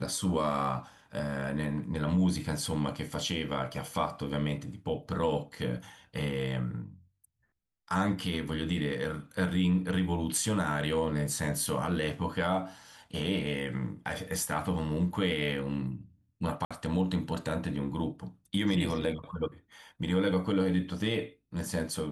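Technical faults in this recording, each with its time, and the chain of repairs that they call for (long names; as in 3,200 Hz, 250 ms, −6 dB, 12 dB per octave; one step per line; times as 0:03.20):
0:16.65–0:16.71: drop-out 56 ms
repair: repair the gap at 0:16.65, 56 ms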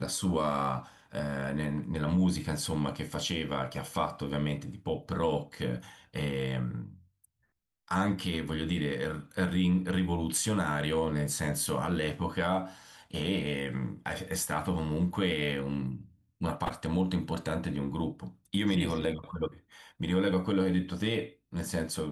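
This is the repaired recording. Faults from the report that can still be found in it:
none of them is left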